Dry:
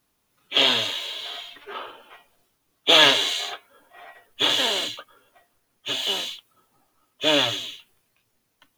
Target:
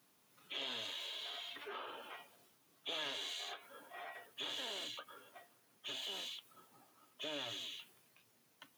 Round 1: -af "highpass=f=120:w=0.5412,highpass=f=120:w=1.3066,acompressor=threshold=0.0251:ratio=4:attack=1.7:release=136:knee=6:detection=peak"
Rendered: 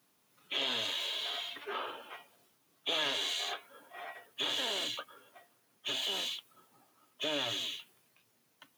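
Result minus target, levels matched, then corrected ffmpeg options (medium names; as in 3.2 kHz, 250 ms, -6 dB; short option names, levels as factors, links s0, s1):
compression: peak gain reduction -9 dB
-af "highpass=f=120:w=0.5412,highpass=f=120:w=1.3066,acompressor=threshold=0.00631:ratio=4:attack=1.7:release=136:knee=6:detection=peak"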